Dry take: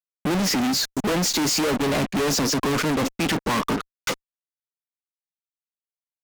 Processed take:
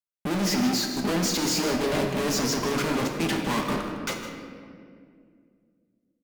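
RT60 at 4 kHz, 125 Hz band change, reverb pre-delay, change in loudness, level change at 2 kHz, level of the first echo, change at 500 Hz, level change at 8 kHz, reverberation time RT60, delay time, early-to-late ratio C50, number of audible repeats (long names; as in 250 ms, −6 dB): 1.3 s, −3.0 dB, 5 ms, −3.0 dB, −3.5 dB, −13.5 dB, −2.5 dB, −4.0 dB, 2.2 s, 156 ms, 3.5 dB, 1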